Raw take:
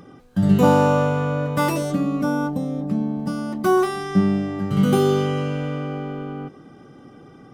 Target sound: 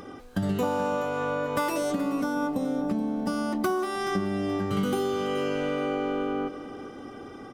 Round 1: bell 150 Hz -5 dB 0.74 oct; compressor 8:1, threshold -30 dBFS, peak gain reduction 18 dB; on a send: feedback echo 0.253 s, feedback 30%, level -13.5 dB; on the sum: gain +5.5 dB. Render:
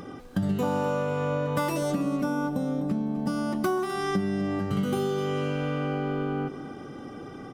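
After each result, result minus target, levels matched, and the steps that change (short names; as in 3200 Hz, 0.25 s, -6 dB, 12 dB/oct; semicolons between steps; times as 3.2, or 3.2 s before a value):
echo 0.173 s early; 125 Hz band +5.5 dB
change: feedback echo 0.426 s, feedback 30%, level -13.5 dB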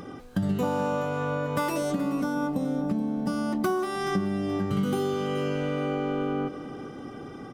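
125 Hz band +4.0 dB
change: bell 150 Hz -15.5 dB 0.74 oct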